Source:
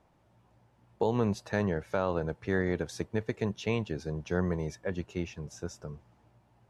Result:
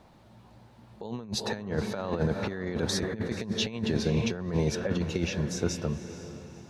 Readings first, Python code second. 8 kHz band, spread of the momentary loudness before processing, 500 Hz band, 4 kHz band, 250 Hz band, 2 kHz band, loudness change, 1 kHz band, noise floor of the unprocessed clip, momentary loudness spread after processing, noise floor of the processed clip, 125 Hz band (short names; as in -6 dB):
+11.0 dB, 11 LU, 0.0 dB, +12.5 dB, +3.0 dB, +1.0 dB, +2.0 dB, -2.0 dB, -66 dBFS, 10 LU, -56 dBFS, +3.5 dB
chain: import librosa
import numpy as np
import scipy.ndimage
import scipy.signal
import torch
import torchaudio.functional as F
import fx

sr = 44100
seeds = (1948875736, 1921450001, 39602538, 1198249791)

p1 = fx.peak_eq(x, sr, hz=220.0, db=8.0, octaves=0.22)
p2 = p1 + fx.echo_diffused(p1, sr, ms=490, feedback_pct=40, wet_db=-13.0, dry=0)
p3 = fx.over_compress(p2, sr, threshold_db=-33.0, ratio=-0.5)
p4 = fx.peak_eq(p3, sr, hz=4100.0, db=8.0, octaves=0.51)
y = p4 * 10.0 ** (5.0 / 20.0)